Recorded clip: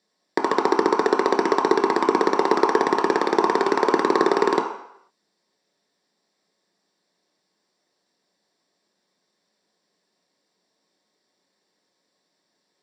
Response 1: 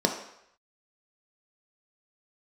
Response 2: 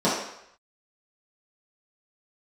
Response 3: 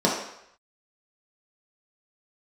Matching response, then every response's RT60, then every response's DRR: 1; 0.75, 0.75, 0.75 s; 2.5, -10.5, -4.5 dB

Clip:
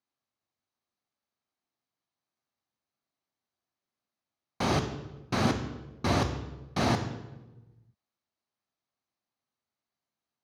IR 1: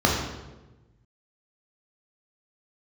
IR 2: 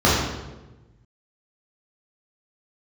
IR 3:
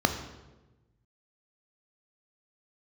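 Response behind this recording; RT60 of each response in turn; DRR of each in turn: 3; 1.1, 1.1, 1.1 s; -2.5, -8.5, 6.0 dB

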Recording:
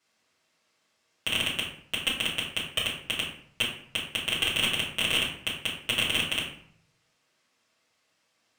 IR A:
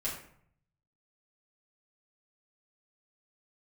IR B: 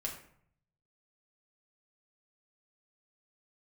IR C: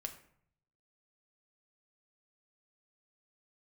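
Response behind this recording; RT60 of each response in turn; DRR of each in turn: A; 0.60, 0.60, 0.65 s; -8.0, -2.0, 4.5 dB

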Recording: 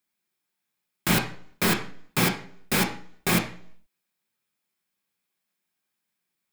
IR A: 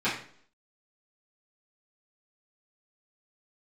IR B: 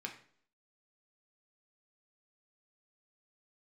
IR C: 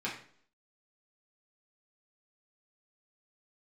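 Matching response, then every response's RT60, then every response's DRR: B; 0.55, 0.55, 0.55 s; -12.5, 1.5, -6.0 dB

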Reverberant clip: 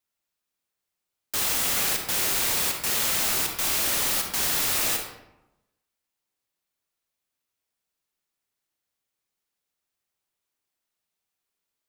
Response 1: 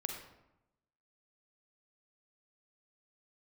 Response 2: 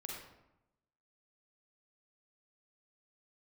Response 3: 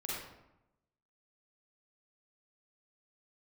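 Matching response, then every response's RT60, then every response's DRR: 1; 0.90, 0.90, 0.90 s; 2.5, -2.0, -6.5 dB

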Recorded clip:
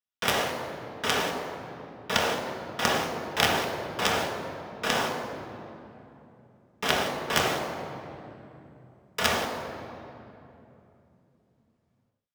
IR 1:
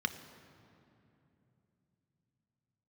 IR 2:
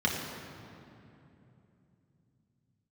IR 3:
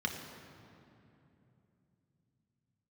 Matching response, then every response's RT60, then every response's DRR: 3; 3.0, 2.9, 2.9 s; 8.5, -3.0, 1.5 dB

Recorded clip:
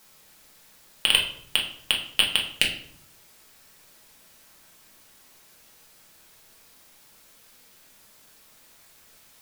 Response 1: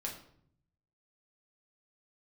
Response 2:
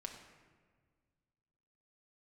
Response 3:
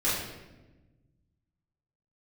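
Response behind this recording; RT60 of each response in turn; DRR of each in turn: 1; 0.65, 1.7, 1.1 s; -2.0, 1.5, -10.5 dB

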